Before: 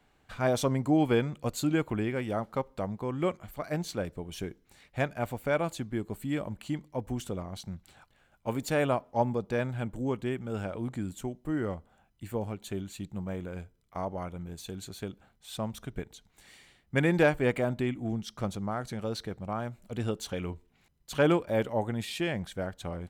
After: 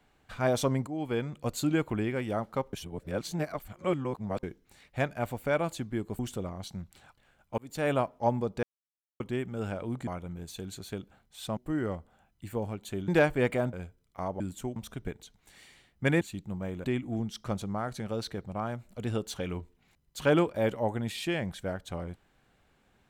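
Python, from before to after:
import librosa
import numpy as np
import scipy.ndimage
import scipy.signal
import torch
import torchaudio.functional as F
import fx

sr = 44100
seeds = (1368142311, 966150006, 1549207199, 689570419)

y = fx.edit(x, sr, fx.fade_in_from(start_s=0.87, length_s=0.64, floor_db=-15.5),
    fx.reverse_span(start_s=2.73, length_s=1.7),
    fx.cut(start_s=6.19, length_s=0.93),
    fx.fade_in_span(start_s=8.51, length_s=0.34),
    fx.silence(start_s=9.56, length_s=0.57),
    fx.swap(start_s=11.0, length_s=0.36, other_s=14.17, other_length_s=1.5),
    fx.swap(start_s=12.87, length_s=0.63, other_s=17.12, other_length_s=0.65), tone=tone)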